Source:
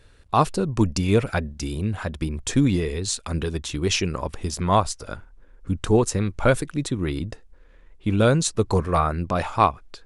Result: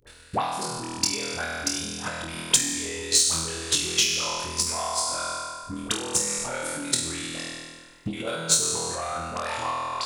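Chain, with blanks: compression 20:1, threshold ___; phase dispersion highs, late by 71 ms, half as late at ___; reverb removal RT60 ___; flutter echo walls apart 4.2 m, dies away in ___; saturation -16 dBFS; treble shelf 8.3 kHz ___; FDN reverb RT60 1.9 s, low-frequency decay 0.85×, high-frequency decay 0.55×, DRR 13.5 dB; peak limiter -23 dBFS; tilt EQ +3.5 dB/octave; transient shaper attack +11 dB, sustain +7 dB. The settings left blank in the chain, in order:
-23 dBFS, 760 Hz, 1.3 s, 1.4 s, -3.5 dB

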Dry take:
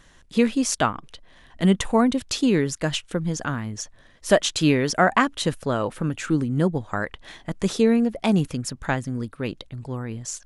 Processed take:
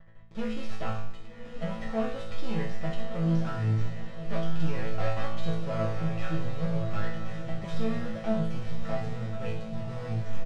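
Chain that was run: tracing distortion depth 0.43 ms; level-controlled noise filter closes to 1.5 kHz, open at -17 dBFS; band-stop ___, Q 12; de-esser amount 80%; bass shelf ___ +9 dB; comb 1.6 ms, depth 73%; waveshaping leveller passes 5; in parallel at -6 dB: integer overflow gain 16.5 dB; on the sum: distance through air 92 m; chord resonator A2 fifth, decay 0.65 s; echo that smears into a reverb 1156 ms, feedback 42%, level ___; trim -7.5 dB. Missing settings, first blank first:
1.2 kHz, 130 Hz, -7 dB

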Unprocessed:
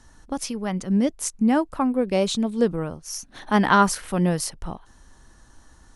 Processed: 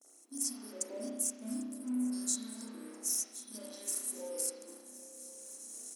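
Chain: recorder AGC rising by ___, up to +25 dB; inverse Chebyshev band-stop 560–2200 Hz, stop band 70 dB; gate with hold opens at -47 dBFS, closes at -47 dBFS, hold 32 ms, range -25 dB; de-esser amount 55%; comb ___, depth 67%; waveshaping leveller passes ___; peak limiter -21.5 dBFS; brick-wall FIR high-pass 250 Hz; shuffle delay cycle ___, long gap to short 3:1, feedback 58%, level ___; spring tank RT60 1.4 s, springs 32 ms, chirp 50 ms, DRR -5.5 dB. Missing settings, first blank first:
11 dB/s, 1.5 ms, 1, 1064 ms, -19 dB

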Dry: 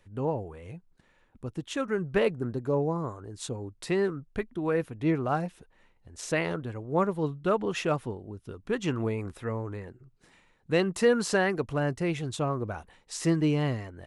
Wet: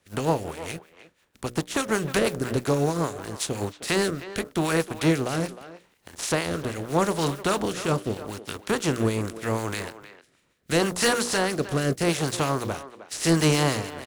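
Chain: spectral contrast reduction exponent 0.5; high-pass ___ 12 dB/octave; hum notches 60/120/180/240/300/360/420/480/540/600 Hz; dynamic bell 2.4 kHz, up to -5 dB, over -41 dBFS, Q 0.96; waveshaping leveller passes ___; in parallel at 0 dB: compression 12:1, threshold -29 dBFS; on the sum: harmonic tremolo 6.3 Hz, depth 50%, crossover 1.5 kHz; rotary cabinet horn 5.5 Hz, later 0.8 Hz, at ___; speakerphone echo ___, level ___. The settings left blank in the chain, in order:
43 Hz, 2, 3.31 s, 310 ms, -13 dB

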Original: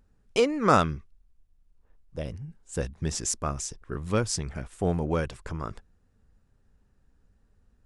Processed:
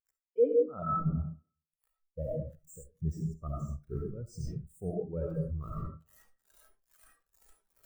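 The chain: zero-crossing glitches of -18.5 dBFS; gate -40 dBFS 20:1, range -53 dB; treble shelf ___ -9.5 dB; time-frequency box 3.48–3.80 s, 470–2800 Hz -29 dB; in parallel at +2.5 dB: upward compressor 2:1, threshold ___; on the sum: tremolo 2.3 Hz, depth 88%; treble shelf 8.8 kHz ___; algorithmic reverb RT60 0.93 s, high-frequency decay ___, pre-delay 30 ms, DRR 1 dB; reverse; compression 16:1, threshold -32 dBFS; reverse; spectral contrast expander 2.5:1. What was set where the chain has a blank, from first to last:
2.4 kHz, -35 dBFS, +5.5 dB, 0.6×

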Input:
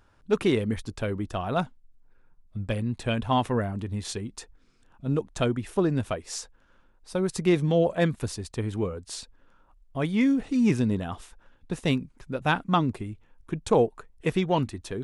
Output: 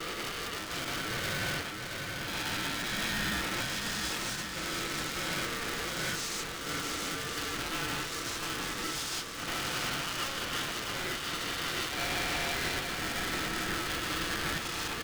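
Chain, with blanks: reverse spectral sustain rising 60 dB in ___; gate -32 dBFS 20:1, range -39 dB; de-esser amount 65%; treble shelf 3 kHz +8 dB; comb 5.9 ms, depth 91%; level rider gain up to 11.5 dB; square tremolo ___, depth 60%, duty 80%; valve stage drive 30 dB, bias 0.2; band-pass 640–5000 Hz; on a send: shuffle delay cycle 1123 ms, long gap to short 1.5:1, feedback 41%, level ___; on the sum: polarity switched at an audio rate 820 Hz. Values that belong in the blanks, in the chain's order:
2.68 s, 5.7 Hz, -5 dB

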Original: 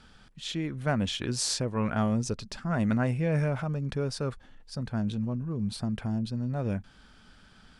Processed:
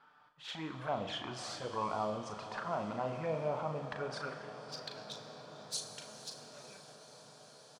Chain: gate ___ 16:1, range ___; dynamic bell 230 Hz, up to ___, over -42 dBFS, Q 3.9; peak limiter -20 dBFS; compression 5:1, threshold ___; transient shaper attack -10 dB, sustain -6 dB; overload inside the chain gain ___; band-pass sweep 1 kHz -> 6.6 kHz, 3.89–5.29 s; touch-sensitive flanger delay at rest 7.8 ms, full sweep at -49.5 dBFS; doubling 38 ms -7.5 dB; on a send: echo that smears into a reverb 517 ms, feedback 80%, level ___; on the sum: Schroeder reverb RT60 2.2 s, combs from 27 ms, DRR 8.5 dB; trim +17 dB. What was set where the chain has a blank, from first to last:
-46 dBFS, -11 dB, -6 dB, -34 dBFS, 31 dB, -14.5 dB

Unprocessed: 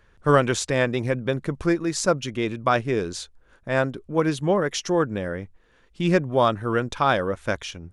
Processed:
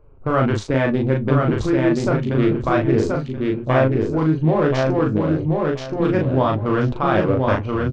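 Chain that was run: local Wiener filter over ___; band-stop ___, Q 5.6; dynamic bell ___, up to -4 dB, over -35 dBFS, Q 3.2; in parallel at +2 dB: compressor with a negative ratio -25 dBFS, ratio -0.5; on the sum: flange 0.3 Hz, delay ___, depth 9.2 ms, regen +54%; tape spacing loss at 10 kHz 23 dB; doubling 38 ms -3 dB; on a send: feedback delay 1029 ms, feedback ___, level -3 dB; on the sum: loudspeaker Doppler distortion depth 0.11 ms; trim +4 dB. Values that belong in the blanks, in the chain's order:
25 samples, 190 Hz, 490 Hz, 6.7 ms, 23%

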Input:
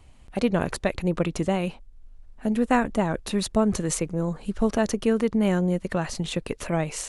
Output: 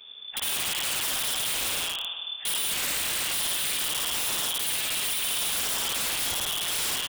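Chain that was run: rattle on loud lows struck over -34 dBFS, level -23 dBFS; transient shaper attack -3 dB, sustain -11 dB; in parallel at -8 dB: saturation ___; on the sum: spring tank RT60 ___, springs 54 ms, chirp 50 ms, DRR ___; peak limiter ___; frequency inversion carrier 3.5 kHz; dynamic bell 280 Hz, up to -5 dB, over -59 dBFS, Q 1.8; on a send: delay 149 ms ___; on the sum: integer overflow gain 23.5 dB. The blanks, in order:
-23.5 dBFS, 1.6 s, -1 dB, -17.5 dBFS, -14.5 dB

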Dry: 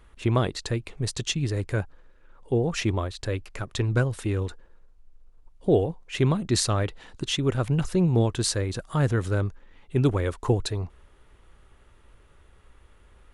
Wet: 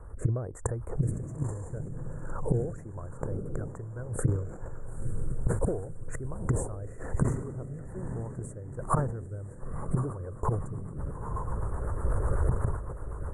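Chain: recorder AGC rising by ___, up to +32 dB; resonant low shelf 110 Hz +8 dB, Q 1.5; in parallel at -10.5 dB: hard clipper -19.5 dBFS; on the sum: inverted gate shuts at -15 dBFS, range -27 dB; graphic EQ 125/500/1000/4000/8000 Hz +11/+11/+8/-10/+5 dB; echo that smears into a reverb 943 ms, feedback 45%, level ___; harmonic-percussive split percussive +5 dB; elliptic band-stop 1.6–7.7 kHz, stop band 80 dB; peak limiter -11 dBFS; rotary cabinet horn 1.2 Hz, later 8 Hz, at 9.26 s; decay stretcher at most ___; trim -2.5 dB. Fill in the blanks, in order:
10 dB/s, -9.5 dB, 72 dB/s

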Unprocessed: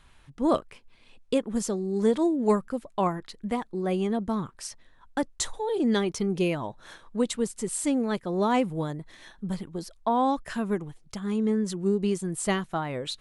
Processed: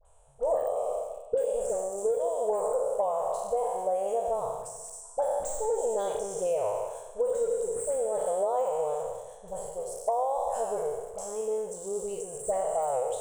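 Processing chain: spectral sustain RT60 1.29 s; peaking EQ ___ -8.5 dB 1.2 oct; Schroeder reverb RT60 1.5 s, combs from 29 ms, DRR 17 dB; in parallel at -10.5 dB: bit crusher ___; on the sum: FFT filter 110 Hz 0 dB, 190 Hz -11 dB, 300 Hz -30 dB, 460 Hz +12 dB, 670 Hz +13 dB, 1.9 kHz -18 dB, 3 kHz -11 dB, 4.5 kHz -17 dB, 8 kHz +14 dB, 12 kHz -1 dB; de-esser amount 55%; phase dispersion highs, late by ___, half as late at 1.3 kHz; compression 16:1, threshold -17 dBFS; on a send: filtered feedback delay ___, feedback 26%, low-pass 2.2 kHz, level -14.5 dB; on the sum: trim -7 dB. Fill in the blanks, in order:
160 Hz, 6-bit, 52 ms, 104 ms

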